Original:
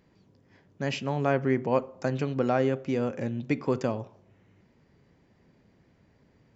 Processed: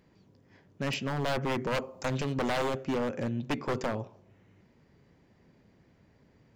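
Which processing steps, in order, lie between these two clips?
0:01.42–0:02.83: high-shelf EQ 5,000 Hz → 3,600 Hz +9 dB
wave folding −23.5 dBFS

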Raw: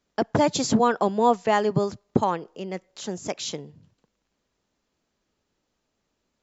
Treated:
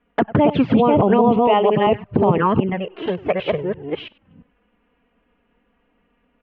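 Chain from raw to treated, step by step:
delay that plays each chunk backwards 340 ms, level −1 dB
Chebyshev low-pass filter 2,900 Hz, order 5
single-tap delay 97 ms −22.5 dB
flanger swept by the level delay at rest 4.2 ms, full sweep at −16.5 dBFS
0:01.47–0:01.87: high-pass filter 680 Hz 6 dB per octave
boost into a limiter +18.5 dB
level −5 dB

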